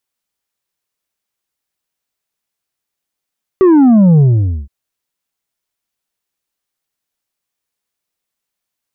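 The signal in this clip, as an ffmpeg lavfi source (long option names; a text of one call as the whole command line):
ffmpeg -f lavfi -i "aevalsrc='0.562*clip((1.07-t)/0.49,0,1)*tanh(1.78*sin(2*PI*390*1.07/log(65/390)*(exp(log(65/390)*t/1.07)-1)))/tanh(1.78)':duration=1.07:sample_rate=44100" out.wav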